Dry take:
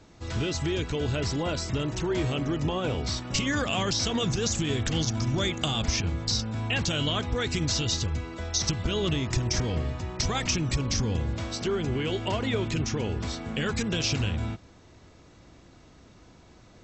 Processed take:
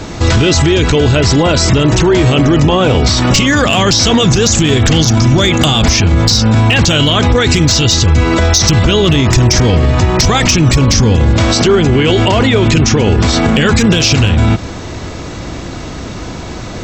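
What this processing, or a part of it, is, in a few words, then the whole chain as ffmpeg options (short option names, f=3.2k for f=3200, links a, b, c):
loud club master: -af "acompressor=threshold=-32dB:ratio=1.5,asoftclip=type=hard:threshold=-21.5dB,alimiter=level_in=30.5dB:limit=-1dB:release=50:level=0:latency=1,volume=-1dB"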